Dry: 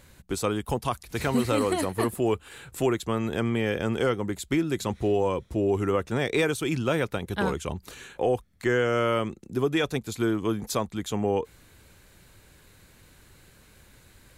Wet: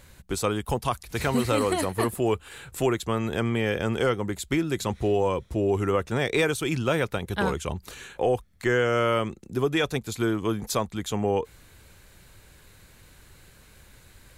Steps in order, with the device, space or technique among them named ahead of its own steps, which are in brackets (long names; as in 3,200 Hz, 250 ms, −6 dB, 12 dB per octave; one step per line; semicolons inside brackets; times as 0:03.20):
low shelf boost with a cut just above (low-shelf EQ 93 Hz +6 dB; parametric band 280 Hz −2 dB)
low-shelf EQ 320 Hz −3 dB
level +2 dB